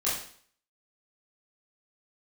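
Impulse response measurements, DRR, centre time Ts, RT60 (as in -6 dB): -9.5 dB, 45 ms, 0.55 s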